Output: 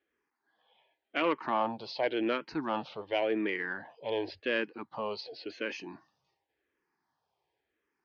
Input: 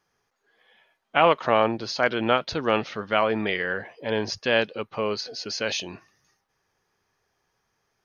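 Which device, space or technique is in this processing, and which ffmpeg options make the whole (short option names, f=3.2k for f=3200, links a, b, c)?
barber-pole phaser into a guitar amplifier: -filter_complex "[0:a]asplit=2[a][b];[b]afreqshift=-0.91[c];[a][c]amix=inputs=2:normalize=1,asoftclip=type=tanh:threshold=-14dB,highpass=80,equalizer=f=110:t=q:w=4:g=-9,equalizer=f=190:t=q:w=4:g=-5,equalizer=f=310:t=q:w=4:g=8,equalizer=f=900:t=q:w=4:g=5,equalizer=f=1.3k:t=q:w=4:g=-5,lowpass=f=4.3k:w=0.5412,lowpass=f=4.3k:w=1.3066,volume=-5dB"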